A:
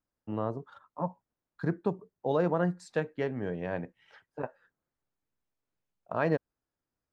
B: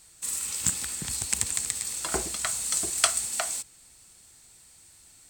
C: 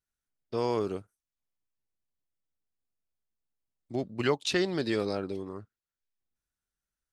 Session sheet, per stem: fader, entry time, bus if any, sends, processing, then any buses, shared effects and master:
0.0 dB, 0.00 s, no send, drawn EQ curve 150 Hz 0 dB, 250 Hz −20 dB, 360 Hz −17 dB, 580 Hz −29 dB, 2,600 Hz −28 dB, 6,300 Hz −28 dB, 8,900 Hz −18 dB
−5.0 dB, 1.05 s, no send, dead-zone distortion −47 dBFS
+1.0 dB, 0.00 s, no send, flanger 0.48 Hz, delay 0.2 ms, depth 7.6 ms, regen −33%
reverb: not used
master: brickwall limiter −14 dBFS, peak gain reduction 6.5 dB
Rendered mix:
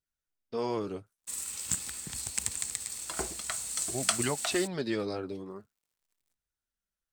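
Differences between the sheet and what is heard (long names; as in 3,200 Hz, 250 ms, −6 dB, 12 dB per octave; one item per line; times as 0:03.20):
stem A: muted
master: missing brickwall limiter −14 dBFS, peak gain reduction 6.5 dB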